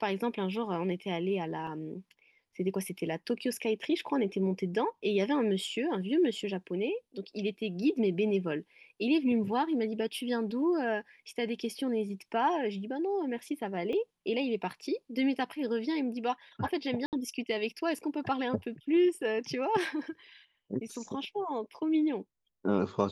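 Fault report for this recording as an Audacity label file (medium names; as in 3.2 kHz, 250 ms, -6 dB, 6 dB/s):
1.670000	1.670000	dropout 3.5 ms
13.930000	13.930000	dropout 2.2 ms
17.060000	17.130000	dropout 68 ms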